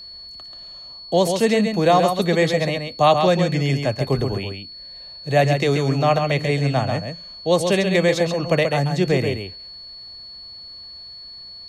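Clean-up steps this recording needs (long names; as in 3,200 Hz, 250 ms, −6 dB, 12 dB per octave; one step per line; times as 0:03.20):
notch filter 4,400 Hz, Q 30
echo removal 134 ms −6 dB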